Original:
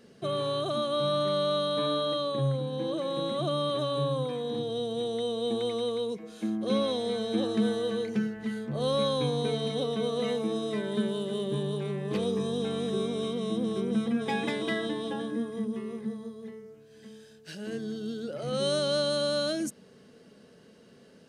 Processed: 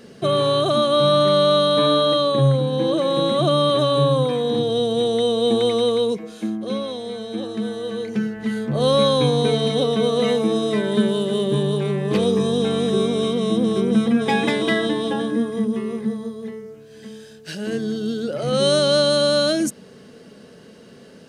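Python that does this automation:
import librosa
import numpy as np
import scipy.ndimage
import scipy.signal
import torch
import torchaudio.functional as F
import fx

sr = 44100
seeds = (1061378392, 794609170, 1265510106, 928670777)

y = fx.gain(x, sr, db=fx.line((6.11, 11.5), (6.81, 0.5), (7.69, 0.5), (8.63, 10.5)))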